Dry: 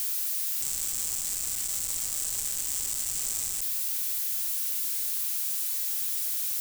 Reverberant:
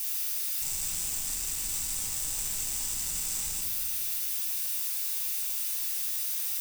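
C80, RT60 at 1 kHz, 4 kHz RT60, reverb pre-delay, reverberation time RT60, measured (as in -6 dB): 5.0 dB, 1.1 s, 1.0 s, 4 ms, 1.3 s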